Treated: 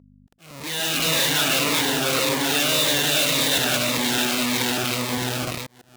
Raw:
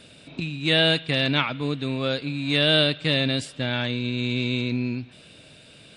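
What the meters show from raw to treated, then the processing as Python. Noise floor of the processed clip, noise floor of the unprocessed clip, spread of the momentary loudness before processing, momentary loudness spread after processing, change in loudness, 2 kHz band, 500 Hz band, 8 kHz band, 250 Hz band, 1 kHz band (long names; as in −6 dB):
−53 dBFS, −50 dBFS, 11 LU, 8 LU, +3.0 dB, +3.0 dB, +0.5 dB, +23.5 dB, −1.0 dB, +7.5 dB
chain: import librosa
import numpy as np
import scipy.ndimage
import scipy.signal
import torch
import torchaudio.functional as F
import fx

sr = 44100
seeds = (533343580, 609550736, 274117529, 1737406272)

p1 = fx.reverse_delay_fb(x, sr, ms=199, feedback_pct=50, wet_db=0.0)
p2 = p1 * (1.0 - 0.32 / 2.0 + 0.32 / 2.0 * np.cos(2.0 * np.pi * 0.95 * (np.arange(len(p1)) / sr)))
p3 = fx.schmitt(p2, sr, flips_db=-35.0)
p4 = p3 + fx.echo_single(p3, sr, ms=667, db=-6.5, dry=0)
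p5 = fx.add_hum(p4, sr, base_hz=50, snr_db=19)
p6 = fx.auto_swell(p5, sr, attack_ms=707.0)
p7 = fx.highpass(p6, sr, hz=600.0, slope=6)
p8 = fx.notch_cascade(p7, sr, direction='falling', hz=1.8)
y = F.gain(torch.from_numpy(p8), 5.5).numpy()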